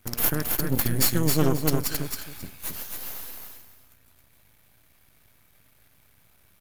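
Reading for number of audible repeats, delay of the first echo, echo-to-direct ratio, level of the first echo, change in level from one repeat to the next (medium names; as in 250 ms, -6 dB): 2, 269 ms, -4.0 dB, -4.0 dB, -13.0 dB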